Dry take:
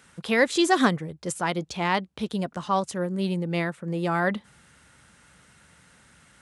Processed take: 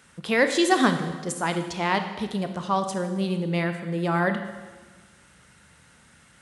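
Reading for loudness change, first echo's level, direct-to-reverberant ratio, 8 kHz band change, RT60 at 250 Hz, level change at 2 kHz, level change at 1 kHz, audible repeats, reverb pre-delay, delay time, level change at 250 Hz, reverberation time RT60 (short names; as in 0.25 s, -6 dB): +1.0 dB, none, 7.0 dB, +1.0 dB, 1.6 s, +1.0 dB, +0.5 dB, none, 22 ms, none, +1.0 dB, 1.4 s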